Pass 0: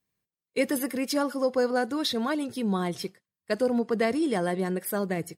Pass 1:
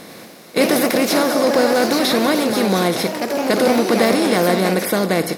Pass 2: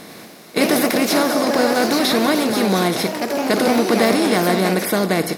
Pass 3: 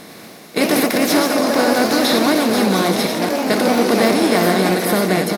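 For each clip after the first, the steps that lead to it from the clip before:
compressor on every frequency bin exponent 0.4; delay with pitch and tempo change per echo 98 ms, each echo +2 semitones, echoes 3, each echo −6 dB; level +5 dB
notch filter 520 Hz, Q 12
delay that plays each chunk backwards 235 ms, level −4.5 dB; on a send: single-tap delay 954 ms −11.5 dB

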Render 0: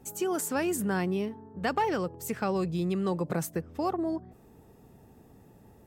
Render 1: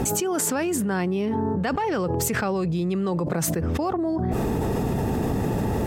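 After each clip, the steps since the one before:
high-shelf EQ 10,000 Hz −11 dB
envelope flattener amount 100%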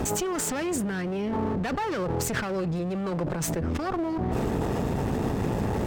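parametric band 12,000 Hz −8.5 dB 0.5 octaves
asymmetric clip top −31.5 dBFS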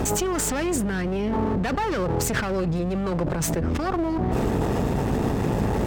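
mains hum 50 Hz, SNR 11 dB
level +3.5 dB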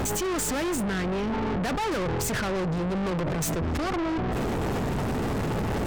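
brickwall limiter −16 dBFS, peak gain reduction 5.5 dB
soft clipping −33 dBFS, distortion −7 dB
level +7 dB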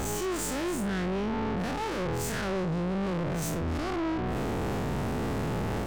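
spectrum smeared in time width 93 ms
level −1.5 dB

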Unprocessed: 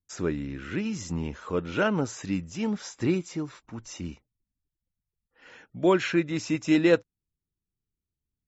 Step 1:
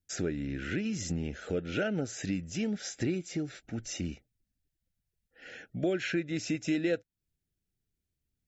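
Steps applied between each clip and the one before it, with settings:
Chebyshev band-stop filter 720–1,500 Hz, order 2
downward compressor 3 to 1, threshold −35 dBFS, peak gain reduction 14.5 dB
level +4 dB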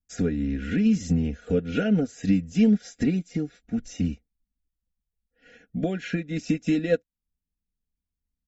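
low-shelf EQ 260 Hz +12 dB
comb filter 4.2 ms, depth 80%
expander for the loud parts 1.5 to 1, over −51 dBFS
level +3 dB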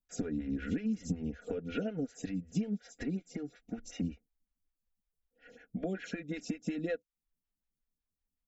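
downward compressor 12 to 1, threshold −28 dBFS, peak gain reduction 14 dB
phaser with staggered stages 5.4 Hz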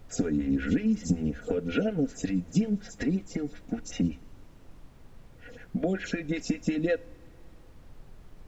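background noise brown −56 dBFS
convolution reverb, pre-delay 3 ms, DRR 18 dB
level +8 dB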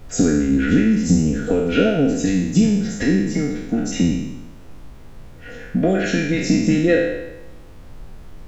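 peak hold with a decay on every bin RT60 0.98 s
level +8 dB

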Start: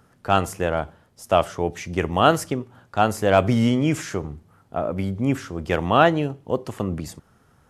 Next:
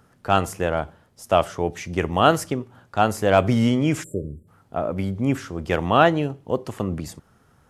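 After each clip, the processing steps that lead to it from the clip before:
time-frequency box erased 0:04.03–0:04.48, 620–7,200 Hz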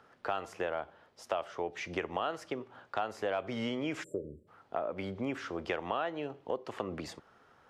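three-way crossover with the lows and the highs turned down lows −16 dB, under 330 Hz, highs −19 dB, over 5,000 Hz
in parallel at −2 dB: brickwall limiter −11.5 dBFS, peak gain reduction 9.5 dB
on the sum: downward compressor 5 to 1, threshold −27 dBFS, peak gain reduction 17 dB
level −5 dB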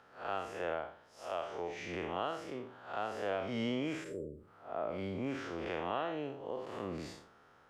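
spectrum smeared in time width 149 ms
level +1 dB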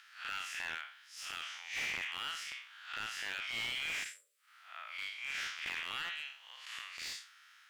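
inverse Chebyshev high-pass filter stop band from 320 Hz, stop band 80 dB
harmonic generator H 6 −44 dB, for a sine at −30.5 dBFS
slew-rate limiting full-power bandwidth 12 Hz
level +12.5 dB

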